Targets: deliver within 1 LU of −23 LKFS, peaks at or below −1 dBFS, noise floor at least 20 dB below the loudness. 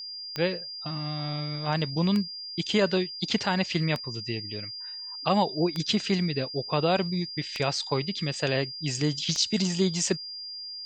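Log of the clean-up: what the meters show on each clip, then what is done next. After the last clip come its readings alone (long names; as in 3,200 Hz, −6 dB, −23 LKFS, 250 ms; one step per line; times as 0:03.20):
number of clicks 6; interfering tone 4,800 Hz; level of the tone −36 dBFS; integrated loudness −28.0 LKFS; sample peak −10.0 dBFS; target loudness −23.0 LKFS
→ click removal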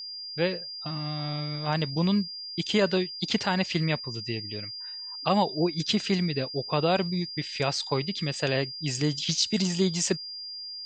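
number of clicks 0; interfering tone 4,800 Hz; level of the tone −36 dBFS
→ notch filter 4,800 Hz, Q 30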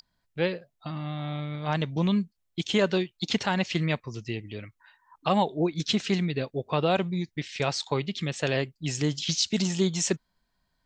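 interfering tone none found; integrated loudness −28.5 LKFS; sample peak −10.0 dBFS; target loudness −23.0 LKFS
→ level +5.5 dB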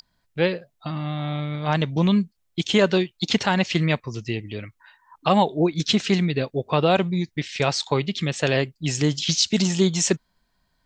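integrated loudness −23.0 LKFS; sample peak −4.5 dBFS; background noise floor −71 dBFS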